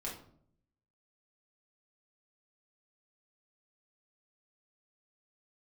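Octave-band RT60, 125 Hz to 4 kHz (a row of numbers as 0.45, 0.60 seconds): 1.0, 0.85, 0.70, 0.55, 0.40, 0.35 seconds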